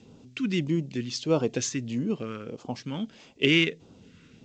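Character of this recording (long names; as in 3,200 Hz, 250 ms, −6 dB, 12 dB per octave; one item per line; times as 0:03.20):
phaser sweep stages 2, 1.6 Hz, lowest notch 700–1,800 Hz
G.722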